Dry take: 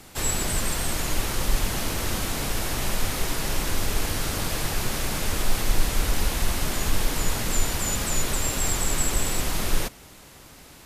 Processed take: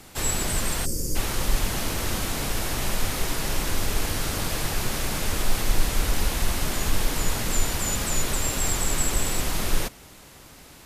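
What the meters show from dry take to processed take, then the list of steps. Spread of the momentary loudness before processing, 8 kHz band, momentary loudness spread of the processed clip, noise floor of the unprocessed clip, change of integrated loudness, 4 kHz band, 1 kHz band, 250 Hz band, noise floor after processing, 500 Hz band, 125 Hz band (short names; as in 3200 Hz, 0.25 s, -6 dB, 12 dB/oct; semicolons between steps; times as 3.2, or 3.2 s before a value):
3 LU, 0.0 dB, 3 LU, -48 dBFS, 0.0 dB, 0.0 dB, 0.0 dB, 0.0 dB, -48 dBFS, 0.0 dB, 0.0 dB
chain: spectral gain 0.85–1.15, 580–4500 Hz -23 dB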